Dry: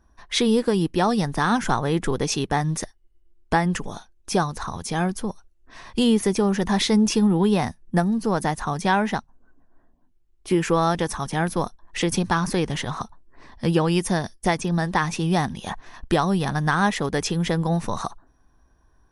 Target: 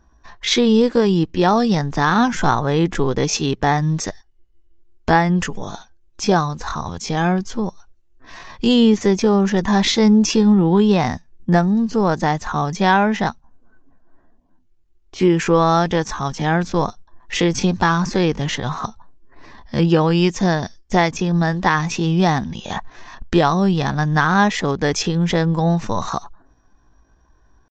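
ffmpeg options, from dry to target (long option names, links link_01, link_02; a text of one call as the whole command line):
ffmpeg -i in.wav -af "aresample=16000,aresample=44100,atempo=0.69,volume=5dB" out.wav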